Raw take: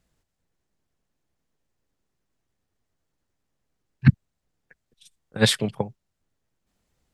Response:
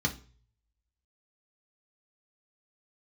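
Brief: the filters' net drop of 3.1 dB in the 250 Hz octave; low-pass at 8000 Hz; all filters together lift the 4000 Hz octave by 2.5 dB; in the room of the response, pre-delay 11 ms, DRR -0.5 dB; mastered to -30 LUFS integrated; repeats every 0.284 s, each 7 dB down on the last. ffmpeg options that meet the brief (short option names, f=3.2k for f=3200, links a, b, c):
-filter_complex "[0:a]lowpass=8k,equalizer=f=250:t=o:g=-4.5,equalizer=f=4k:t=o:g=3,aecho=1:1:284|568|852|1136|1420:0.447|0.201|0.0905|0.0407|0.0183,asplit=2[a][b];[1:a]atrim=start_sample=2205,adelay=11[c];[b][c]afir=irnorm=-1:irlink=0,volume=-6.5dB[d];[a][d]amix=inputs=2:normalize=0,volume=-14.5dB"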